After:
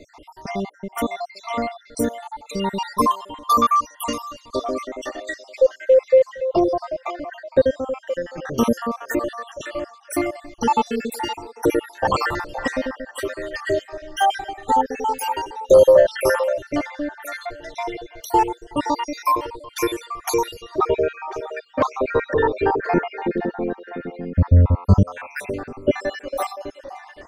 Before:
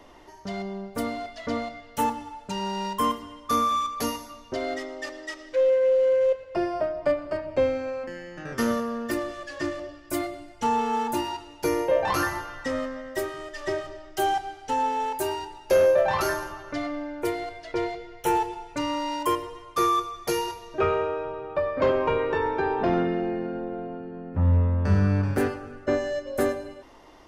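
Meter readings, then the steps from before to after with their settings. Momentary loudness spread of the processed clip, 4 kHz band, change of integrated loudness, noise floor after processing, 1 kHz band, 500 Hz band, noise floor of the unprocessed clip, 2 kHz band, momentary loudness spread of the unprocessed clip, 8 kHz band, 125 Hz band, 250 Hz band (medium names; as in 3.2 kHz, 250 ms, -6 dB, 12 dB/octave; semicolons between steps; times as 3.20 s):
15 LU, +3.0 dB, +5.0 dB, -51 dBFS, +5.0 dB, +5.0 dB, -49 dBFS, +4.0 dB, 12 LU, +4.0 dB, +5.0 dB, +4.0 dB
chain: random holes in the spectrogram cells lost 69%; repeats whose band climbs or falls 519 ms, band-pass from 690 Hz, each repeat 1.4 oct, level -9 dB; trim +9 dB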